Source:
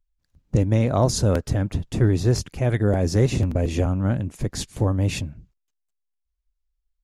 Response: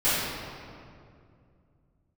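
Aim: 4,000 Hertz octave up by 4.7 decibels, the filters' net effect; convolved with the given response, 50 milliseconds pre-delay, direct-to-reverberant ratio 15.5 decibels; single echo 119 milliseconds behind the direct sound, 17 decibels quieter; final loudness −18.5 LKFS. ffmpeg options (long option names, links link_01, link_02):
-filter_complex "[0:a]equalizer=frequency=4000:width_type=o:gain=6,aecho=1:1:119:0.141,asplit=2[link_01][link_02];[1:a]atrim=start_sample=2205,adelay=50[link_03];[link_02][link_03]afir=irnorm=-1:irlink=0,volume=-31dB[link_04];[link_01][link_04]amix=inputs=2:normalize=0,volume=3.5dB"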